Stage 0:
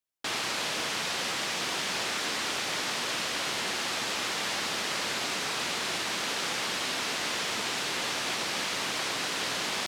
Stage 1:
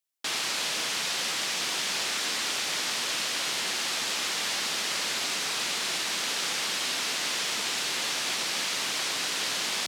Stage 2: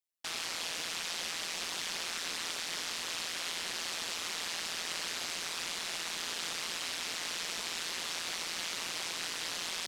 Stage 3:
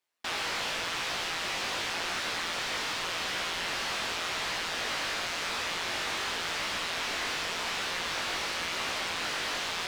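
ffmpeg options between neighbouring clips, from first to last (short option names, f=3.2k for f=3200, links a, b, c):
-af "highpass=110,highshelf=f=2.2k:g=8.5,volume=-3.5dB"
-af "tremolo=f=170:d=0.889,volume=-4dB"
-filter_complex "[0:a]flanger=delay=15.5:depth=5.5:speed=0.9,asplit=2[a][b];[b]highpass=f=720:p=1,volume=22dB,asoftclip=type=tanh:threshold=-24.5dB[c];[a][c]amix=inputs=2:normalize=0,lowpass=f=1.4k:p=1,volume=-6dB,volume=6dB"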